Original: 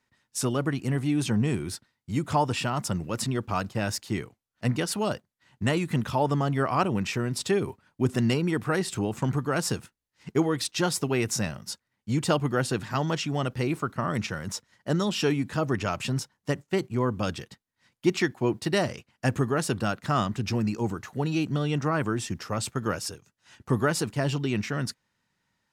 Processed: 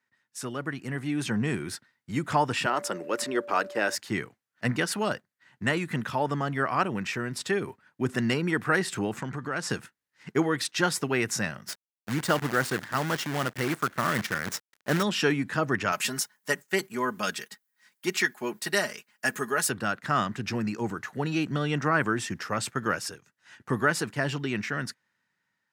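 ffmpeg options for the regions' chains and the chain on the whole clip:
ffmpeg -i in.wav -filter_complex "[0:a]asettb=1/sr,asplit=3[link_01][link_02][link_03];[link_01]atrim=end=2.664[link_04];[link_02]atrim=start=2.66:end=3.95,asetpts=PTS-STARTPTS,afade=type=in:duration=0.004:curve=qsin,afade=type=out:start_time=1.286:duration=0.004:curve=qsin,highpass=frequency=380:width_type=q:width=1.9,aeval=exprs='val(0)+0.0112*sin(2*PI*580*n/s)':channel_layout=same[link_05];[link_03]atrim=start=3.946[link_06];[link_04][link_05]acrossfade=duration=0.004:curve1=hsin:curve2=qsin[link_07];[link_07][link_06]acrossfade=duration=0.004:curve1=qsin:curve2=hsin,asettb=1/sr,asplit=3[link_08][link_09][link_10];[link_08]atrim=end=9.214[link_11];[link_09]atrim=start=9.21:end=9.7,asetpts=PTS-STARTPTS,afade=type=in:duration=0.004:curve=qsin,afade=type=out:start_time=0.486:duration=0.004:curve=qsin,lowpass=8300,acompressor=threshold=-29dB:ratio=4:attack=3.2:release=140:knee=1:detection=peak[link_12];[link_10]atrim=start=9.696[link_13];[link_11][link_12]acrossfade=duration=0.004:curve1=hsin:curve2=qsin[link_14];[link_14][link_13]acrossfade=duration=0.004:curve1=qsin:curve2=hsin,asettb=1/sr,asplit=3[link_15][link_16][link_17];[link_15]atrim=end=11.684[link_18];[link_16]atrim=start=11.68:end=15.03,asetpts=PTS-STARTPTS,afade=type=in:duration=0.004:curve=qsin,afade=type=out:start_time=3.346:duration=0.004:curve=qsin,bandreject=frequency=2500:width=5.6,acrusher=bits=6:dc=4:mix=0:aa=0.000001[link_19];[link_17]atrim=start=15.026[link_20];[link_18][link_19]acrossfade=duration=0.004:curve1=hsin:curve2=qsin[link_21];[link_21][link_20]acrossfade=duration=0.004:curve1=qsin:curve2=hsin,asettb=1/sr,asplit=3[link_22][link_23][link_24];[link_22]atrim=end=15.924[link_25];[link_23]atrim=start=15.92:end=19.7,asetpts=PTS-STARTPTS,afade=type=in:duration=0.004:curve=qsin,afade=type=out:start_time=3.776:duration=0.004:curve=qsin,aemphasis=mode=production:type=bsi,aecho=1:1:4.8:0.54,atrim=end_sample=166698[link_26];[link_24]atrim=start=19.696[link_27];[link_25][link_26]acrossfade=duration=0.004:curve1=hsin:curve2=qsin[link_28];[link_28][link_27]acrossfade=duration=0.004:curve1=qsin:curve2=hsin,highpass=130,equalizer=frequency=1700:width_type=o:width=0.87:gain=9,dynaudnorm=framelen=470:gausssize=5:maxgain=11.5dB,volume=-8.5dB" out.wav

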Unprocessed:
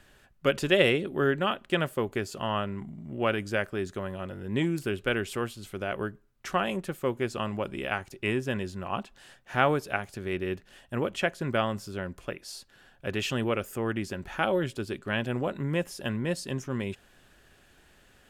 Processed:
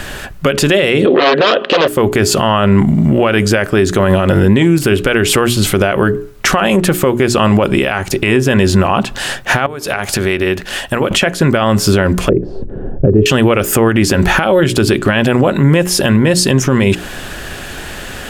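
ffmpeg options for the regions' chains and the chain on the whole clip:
ffmpeg -i in.wav -filter_complex "[0:a]asettb=1/sr,asplit=3[link_01][link_02][link_03];[link_01]atrim=end=1.064[link_04];[link_02]atrim=start=1.06:end=1.88,asetpts=PTS-STARTPTS,afade=type=in:duration=0.004:curve=qsin,afade=type=out:start_time=0.816:duration=0.004:curve=qsin,aeval=exprs='0.211*sin(PI/2*4.47*val(0)/0.211)':channel_layout=same,highpass=460,equalizer=frequency=500:width_type=q:width=4:gain=9,equalizer=frequency=870:width_type=q:width=4:gain=-9,equalizer=frequency=1400:width_type=q:width=4:gain=-5,equalizer=frequency=2200:width_type=q:width=4:gain=-9,lowpass=frequency=3700:width=0.5412,lowpass=frequency=3700:width=1.3066[link_05];[link_03]atrim=start=1.876[link_06];[link_04][link_05]acrossfade=duration=0.004:curve1=hsin:curve2=qsin[link_07];[link_07][link_06]acrossfade=duration=0.004:curve1=qsin:curve2=hsin,asettb=1/sr,asplit=3[link_08][link_09][link_10];[link_08]atrim=end=9.664[link_11];[link_09]atrim=start=9.66:end=11.11,asetpts=PTS-STARTPTS,afade=type=in:duration=0.004:curve=qsin,afade=type=out:start_time=1.446:duration=0.004:curve=qsin,lowshelf=frequency=430:gain=-6,acompressor=threshold=-43dB:ratio=8:attack=3.2:release=140:knee=1:detection=peak[link_12];[link_10]atrim=start=11.106[link_13];[link_11][link_12]acrossfade=duration=0.004:curve1=hsin:curve2=qsin[link_14];[link_14][link_13]acrossfade=duration=0.004:curve1=qsin:curve2=hsin,asettb=1/sr,asplit=3[link_15][link_16][link_17];[link_15]atrim=end=12.294[link_18];[link_16]atrim=start=12.29:end=13.26,asetpts=PTS-STARTPTS,afade=type=in:duration=0.004:curve=qsin,afade=type=out:start_time=0.966:duration=0.004:curve=qsin,lowpass=frequency=410:width_type=q:width=2.5,lowshelf=frequency=180:gain=12[link_19];[link_17]atrim=start=13.256[link_20];[link_18][link_19]acrossfade=duration=0.004:curve1=hsin:curve2=qsin[link_21];[link_21][link_20]acrossfade=duration=0.004:curve1=qsin:curve2=hsin,bandreject=frequency=60:width_type=h:width=6,bandreject=frequency=120:width_type=h:width=6,bandreject=frequency=180:width_type=h:width=6,bandreject=frequency=240:width_type=h:width=6,bandreject=frequency=300:width_type=h:width=6,bandreject=frequency=360:width_type=h:width=6,bandreject=frequency=420:width_type=h:width=6,acompressor=threshold=-36dB:ratio=6,alimiter=level_in=34dB:limit=-1dB:release=50:level=0:latency=1,volume=-1dB" out.wav

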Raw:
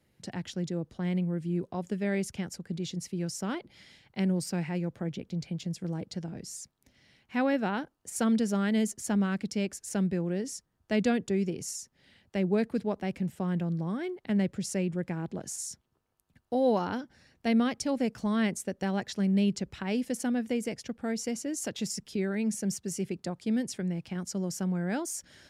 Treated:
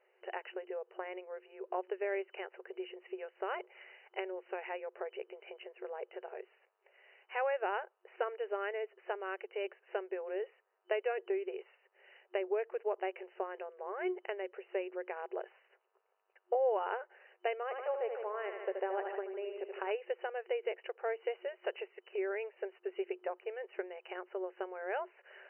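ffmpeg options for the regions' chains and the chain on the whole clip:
ffmpeg -i in.wav -filter_complex "[0:a]asettb=1/sr,asplit=3[link_01][link_02][link_03];[link_01]atrim=end=17.634[link_04];[link_02]atrim=start=17.63:end=19.91,asetpts=PTS-STARTPTS,afade=type=in:duration=0.004:curve=qsin,afade=type=out:start_time=2.276:duration=0.004:curve=qsin,lowpass=frequency=1400:poles=1,aecho=1:1:76|152|228|304|380|456|532:0.422|0.245|0.142|0.0823|0.0477|0.0277|0.0161,atrim=end_sample=100548[link_05];[link_03]atrim=start=19.906[link_06];[link_04][link_05]acrossfade=duration=0.004:curve1=hsin:curve2=qsin[link_07];[link_07][link_06]acrossfade=duration=0.004:curve1=qsin:curve2=hsin,acompressor=threshold=-33dB:ratio=4,equalizer=frequency=670:width_type=o:width=2.3:gain=4,afftfilt=real='re*between(b*sr/4096,360,3000)':imag='im*between(b*sr/4096,360,3000)':win_size=4096:overlap=0.75,volume=1.5dB" out.wav

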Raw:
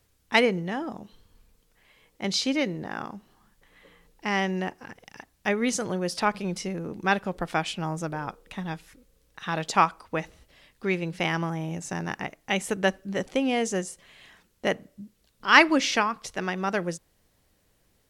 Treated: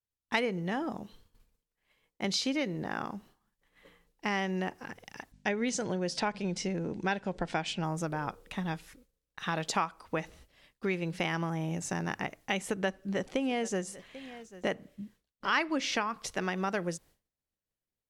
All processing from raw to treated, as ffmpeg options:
ffmpeg -i in.wav -filter_complex "[0:a]asettb=1/sr,asplit=3[link_01][link_02][link_03];[link_01]atrim=end=5.324[link_04];[link_02]atrim=start=5.32:end=7.83,asetpts=PTS-STARTPTS,afade=type=in:duration=0.004:curve=qsin,afade=type=out:start_time=2.506:duration=0.004:curve=qsin,lowpass=frequency=8200:width=0.5412,lowpass=frequency=8200:width=1.3066,bandreject=frequency=1200:width=5.2,aeval=exprs='val(0)+0.00316*(sin(2*PI*50*n/s)+sin(2*PI*2*50*n/s)/2+sin(2*PI*3*50*n/s)/3+sin(2*PI*4*50*n/s)/4+sin(2*PI*5*50*n/s)/5)':channel_layout=same[link_05];[link_03]atrim=start=7.826[link_06];[link_04][link_05]acrossfade=duration=0.004:curve1=hsin:curve2=qsin[link_07];[link_07][link_06]acrossfade=duration=0.004:curve1=qsin:curve2=hsin,asettb=1/sr,asplit=3[link_08][link_09][link_10];[link_08]atrim=end=12.594[link_11];[link_09]atrim=start=12.59:end=16.08,asetpts=PTS-STARTPTS,afade=type=in:duration=0.004:curve=qsin,afade=type=out:start_time=3.486:duration=0.004:curve=qsin,highshelf=frequency=6400:gain=-5,aecho=1:1:790:0.0841,atrim=end_sample=153909[link_12];[link_10]atrim=start=16.076[link_13];[link_11][link_12]acrossfade=duration=0.004:curve1=hsin:curve2=qsin[link_14];[link_14][link_13]acrossfade=duration=0.004:curve1=qsin:curve2=hsin,bandreject=frequency=50:width_type=h:width=6,bandreject=frequency=100:width_type=h:width=6,agate=range=-33dB:threshold=-50dB:ratio=3:detection=peak,acompressor=threshold=-29dB:ratio=3" out.wav

